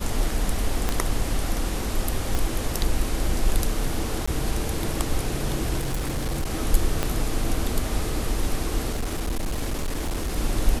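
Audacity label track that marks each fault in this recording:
0.890000	0.890000	click −9 dBFS
2.350000	2.350000	click
4.260000	4.280000	drop-out 15 ms
5.780000	6.510000	clipping −22 dBFS
7.030000	7.030000	click −9 dBFS
8.920000	10.380000	clipping −22.5 dBFS

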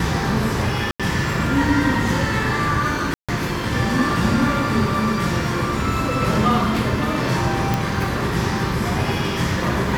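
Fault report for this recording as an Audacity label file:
0.910000	1.000000	drop-out 86 ms
3.140000	3.290000	drop-out 146 ms
7.740000	7.740000	click

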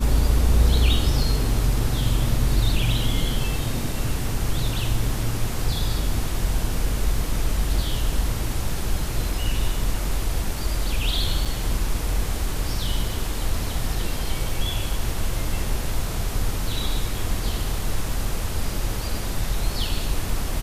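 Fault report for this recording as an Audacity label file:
11.450000	11.460000	drop-out 6.5 ms

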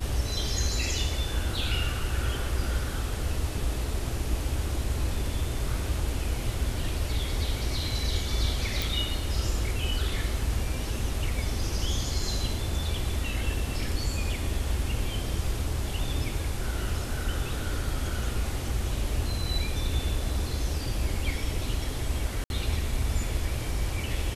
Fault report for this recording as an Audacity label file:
8.820000	8.820000	click
22.440000	22.500000	drop-out 61 ms

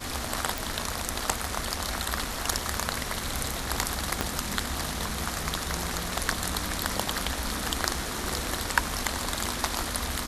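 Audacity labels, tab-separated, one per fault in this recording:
0.580000	0.580000	click
4.210000	4.210000	click −9 dBFS

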